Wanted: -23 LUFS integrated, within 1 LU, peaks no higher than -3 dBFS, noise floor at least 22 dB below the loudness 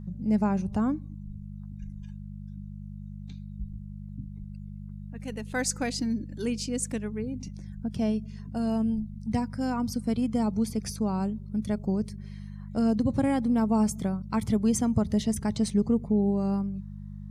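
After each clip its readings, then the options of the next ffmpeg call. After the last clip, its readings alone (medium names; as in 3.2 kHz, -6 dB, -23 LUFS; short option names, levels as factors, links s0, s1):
hum 50 Hz; highest harmonic 200 Hz; hum level -38 dBFS; loudness -28.5 LUFS; peak level -12.0 dBFS; loudness target -23.0 LUFS
-> -af "bandreject=f=50:t=h:w=4,bandreject=f=100:t=h:w=4,bandreject=f=150:t=h:w=4,bandreject=f=200:t=h:w=4"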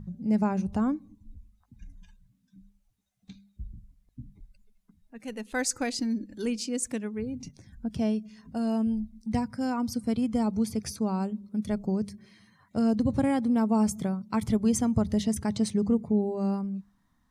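hum not found; loudness -29.0 LUFS; peak level -12.5 dBFS; loudness target -23.0 LUFS
-> -af "volume=2"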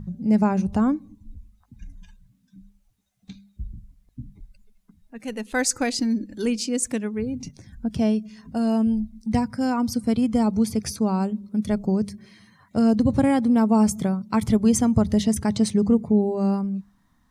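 loudness -23.0 LUFS; peak level -6.5 dBFS; noise floor -65 dBFS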